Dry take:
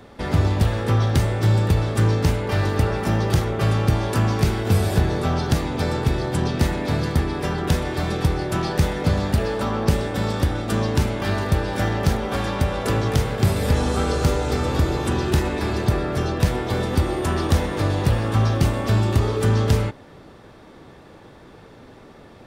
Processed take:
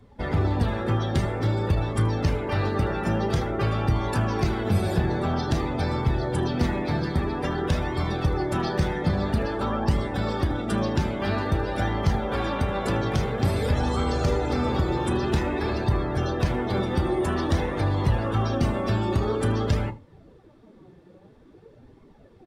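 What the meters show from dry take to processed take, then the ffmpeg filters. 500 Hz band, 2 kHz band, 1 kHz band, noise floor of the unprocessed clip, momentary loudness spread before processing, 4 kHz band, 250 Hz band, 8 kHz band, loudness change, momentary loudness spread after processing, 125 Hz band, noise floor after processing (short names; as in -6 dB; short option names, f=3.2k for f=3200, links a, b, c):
-2.5 dB, -3.5 dB, -2.0 dB, -46 dBFS, 4 LU, -5.0 dB, -2.5 dB, -9.0 dB, -4.0 dB, 2 LU, -5.0 dB, -53 dBFS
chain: -filter_complex "[0:a]flanger=delay=0.9:depth=4.8:regen=62:speed=0.5:shape=sinusoidal,asplit=2[a][b];[b]alimiter=limit=-19.5dB:level=0:latency=1:release=33,volume=-1dB[c];[a][c]amix=inputs=2:normalize=0,asplit=2[d][e];[e]adelay=33,volume=-11.5dB[f];[d][f]amix=inputs=2:normalize=0,aecho=1:1:78:0.2,afftdn=nr=14:nf=-35,volume=-3dB"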